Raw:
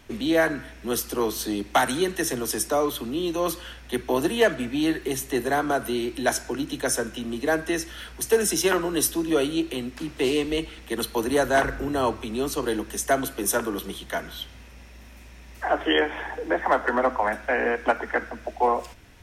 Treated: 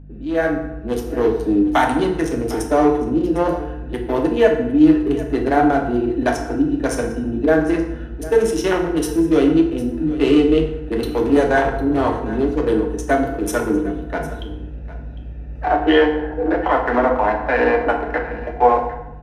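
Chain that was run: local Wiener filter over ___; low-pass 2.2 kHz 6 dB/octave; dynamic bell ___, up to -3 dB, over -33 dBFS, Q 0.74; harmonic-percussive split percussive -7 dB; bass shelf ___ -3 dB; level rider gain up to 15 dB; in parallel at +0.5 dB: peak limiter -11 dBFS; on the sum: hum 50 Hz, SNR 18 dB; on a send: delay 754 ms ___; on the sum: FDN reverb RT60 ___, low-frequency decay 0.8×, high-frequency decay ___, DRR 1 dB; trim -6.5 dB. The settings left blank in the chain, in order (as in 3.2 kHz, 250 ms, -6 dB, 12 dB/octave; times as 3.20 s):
41 samples, 290 Hz, 460 Hz, -17 dB, 0.87 s, 0.7×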